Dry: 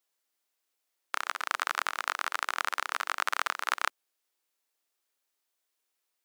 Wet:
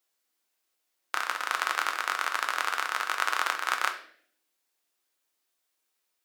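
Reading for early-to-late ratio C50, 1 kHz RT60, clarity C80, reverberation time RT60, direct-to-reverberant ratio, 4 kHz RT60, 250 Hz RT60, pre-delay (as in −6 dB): 10.5 dB, 0.50 s, 14.5 dB, 0.60 s, 4.5 dB, 0.55 s, 0.90 s, 4 ms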